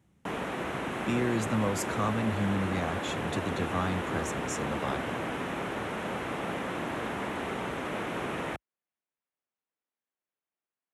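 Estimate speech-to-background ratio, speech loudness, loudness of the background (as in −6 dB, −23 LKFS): 1.0 dB, −33.0 LKFS, −34.0 LKFS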